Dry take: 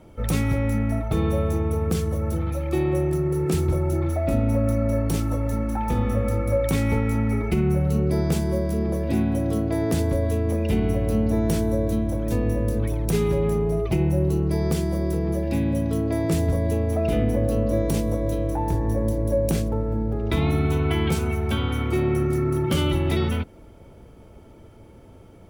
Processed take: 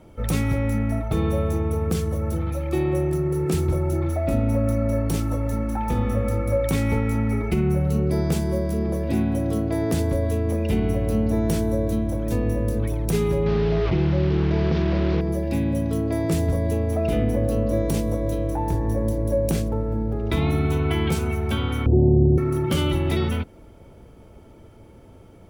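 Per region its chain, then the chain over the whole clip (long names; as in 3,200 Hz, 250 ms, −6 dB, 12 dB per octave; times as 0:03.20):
0:13.46–0:15.21: linear delta modulator 32 kbit/s, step −26 dBFS + high-frequency loss of the air 270 metres + envelope flattener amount 70%
0:21.86–0:22.38: Butterworth low-pass 790 Hz 48 dB per octave + spectral tilt −2.5 dB per octave
whole clip: no processing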